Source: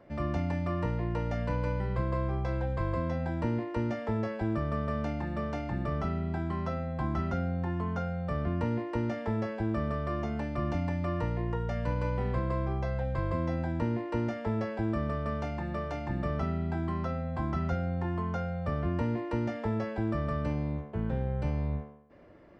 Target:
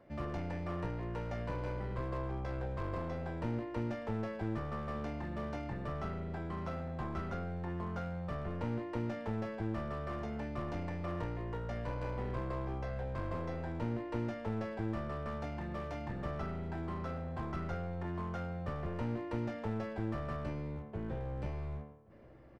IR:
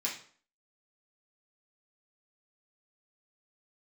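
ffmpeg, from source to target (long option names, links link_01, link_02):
-filter_complex "[0:a]aeval=exprs='clip(val(0),-1,0.0237)':channel_layout=same,asplit=2[link_01][link_02];[link_02]adelay=1130,lowpass=frequency=1800:poles=1,volume=-23dB,asplit=2[link_03][link_04];[link_04]adelay=1130,lowpass=frequency=1800:poles=1,volume=0.4,asplit=2[link_05][link_06];[link_06]adelay=1130,lowpass=frequency=1800:poles=1,volume=0.4[link_07];[link_01][link_03][link_05][link_07]amix=inputs=4:normalize=0,volume=-5dB"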